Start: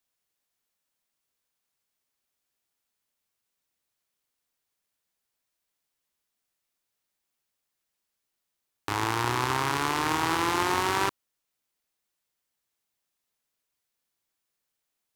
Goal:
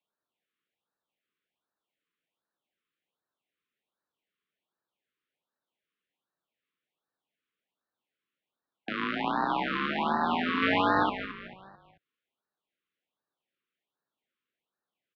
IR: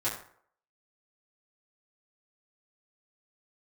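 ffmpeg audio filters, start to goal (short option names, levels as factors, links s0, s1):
-filter_complex "[0:a]asettb=1/sr,asplit=3[s0][s1][s2];[s0]atrim=end=10.624[s3];[s1]atrim=start=10.62:end=11.03,asetpts=PTS-STARTPTS,afade=t=in:d=0.004:c=qsin,afade=t=out:st=0.406:d=0.004:c=qsin,aeval=exprs='0.355*(cos(1*acos(clip(val(0)/0.355,-1,1)))-cos(1*PI/2))+0.112*(cos(6*acos(clip(val(0)/0.355,-1,1)))-cos(6*PI/2))':c=same[s4];[s2]atrim=start=11.026[s5];[s3][s4]acrossfade=d=0.004:c1=hsin:c2=qsin[s6];[s6][s5]acrossfade=d=0.004:c1=qsin:c2=hsin,highpass=f=250:t=q:w=0.5412,highpass=f=250:t=q:w=1.307,lowpass=f=3500:t=q:w=0.5176,lowpass=f=3500:t=q:w=0.7071,lowpass=f=3500:t=q:w=1.932,afreqshift=-87,asplit=2[s7][s8];[s8]asplit=4[s9][s10][s11][s12];[s9]adelay=220,afreqshift=-35,volume=0.282[s13];[s10]adelay=440,afreqshift=-70,volume=0.112[s14];[s11]adelay=660,afreqshift=-105,volume=0.0452[s15];[s12]adelay=880,afreqshift=-140,volume=0.018[s16];[s13][s14][s15][s16]amix=inputs=4:normalize=0[s17];[s7][s17]amix=inputs=2:normalize=0,afftfilt=real='re*(1-between(b*sr/1024,700*pow(2700/700,0.5+0.5*sin(2*PI*1.3*pts/sr))/1.41,700*pow(2700/700,0.5+0.5*sin(2*PI*1.3*pts/sr))*1.41))':imag='im*(1-between(b*sr/1024,700*pow(2700/700,0.5+0.5*sin(2*PI*1.3*pts/sr))/1.41,700*pow(2700/700,0.5+0.5*sin(2*PI*1.3*pts/sr))*1.41))':win_size=1024:overlap=0.75"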